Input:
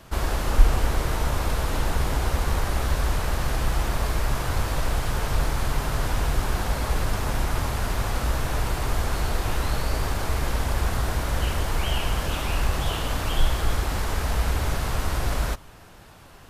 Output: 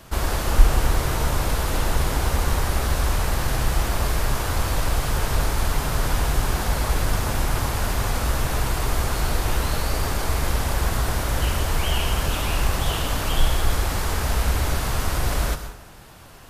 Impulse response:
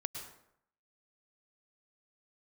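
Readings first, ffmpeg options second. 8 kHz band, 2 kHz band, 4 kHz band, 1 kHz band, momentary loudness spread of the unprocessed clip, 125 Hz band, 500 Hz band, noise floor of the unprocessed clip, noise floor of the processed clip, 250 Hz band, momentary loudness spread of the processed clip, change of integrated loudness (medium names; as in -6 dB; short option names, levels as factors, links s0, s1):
+5.5 dB, +2.5 dB, +3.5 dB, +2.5 dB, 2 LU, +2.0 dB, +2.0 dB, -47 dBFS, -41 dBFS, +2.5 dB, 2 LU, +2.5 dB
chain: -filter_complex "[0:a]asplit=2[s0][s1];[1:a]atrim=start_sample=2205,highshelf=f=5000:g=7.5[s2];[s1][s2]afir=irnorm=-1:irlink=0,volume=1.26[s3];[s0][s3]amix=inputs=2:normalize=0,volume=0.596"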